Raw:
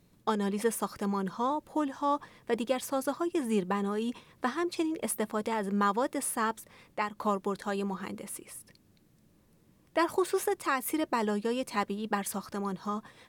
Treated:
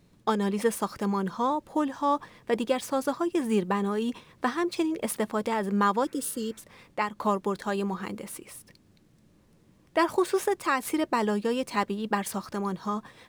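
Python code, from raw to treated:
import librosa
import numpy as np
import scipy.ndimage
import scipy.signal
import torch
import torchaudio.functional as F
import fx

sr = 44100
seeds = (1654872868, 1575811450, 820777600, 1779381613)

y = scipy.signal.medfilt(x, 3)
y = fx.spec_repair(y, sr, seeds[0], start_s=6.07, length_s=0.48, low_hz=550.0, high_hz=2700.0, source='after')
y = F.gain(torch.from_numpy(y), 3.5).numpy()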